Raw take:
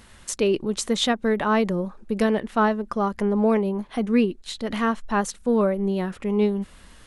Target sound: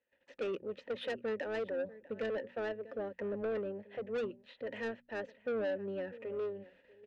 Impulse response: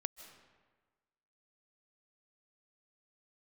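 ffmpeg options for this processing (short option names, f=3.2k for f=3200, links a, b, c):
-filter_complex "[0:a]bandreject=f=60:t=h:w=6,bandreject=f=120:t=h:w=6,bandreject=f=180:t=h:w=6,bandreject=f=240:t=h:w=6,agate=range=-22dB:threshold=-46dB:ratio=16:detection=peak,acrossover=split=220|4800[a][b][c];[c]acompressor=threshold=-54dB:ratio=6[d];[a][b][d]amix=inputs=3:normalize=0,asplit=3[e][f][g];[e]bandpass=f=530:t=q:w=8,volume=0dB[h];[f]bandpass=f=1.84k:t=q:w=8,volume=-6dB[i];[g]bandpass=f=2.48k:t=q:w=8,volume=-9dB[j];[h][i][j]amix=inputs=3:normalize=0,adynamicsmooth=sensitivity=4:basefreq=4.3k,asplit=2[k][l];[l]aecho=0:1:642:0.0794[m];[k][m]amix=inputs=2:normalize=0,asoftclip=type=tanh:threshold=-33dB,asplit=2[n][o];[o]asetrate=22050,aresample=44100,atempo=2,volume=-13dB[p];[n][p]amix=inputs=2:normalize=0,volume=1dB"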